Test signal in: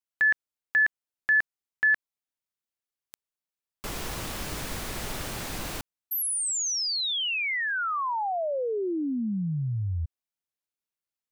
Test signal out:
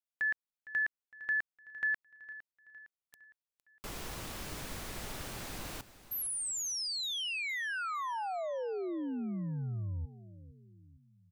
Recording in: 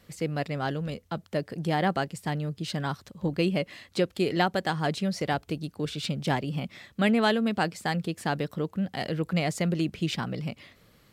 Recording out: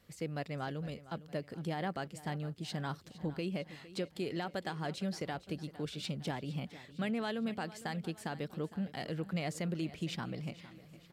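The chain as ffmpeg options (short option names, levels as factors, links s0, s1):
-filter_complex "[0:a]alimiter=limit=0.106:level=0:latency=1:release=155,asplit=2[s0][s1];[s1]aecho=0:1:459|918|1377|1836:0.15|0.0733|0.0359|0.0176[s2];[s0][s2]amix=inputs=2:normalize=0,volume=0.398"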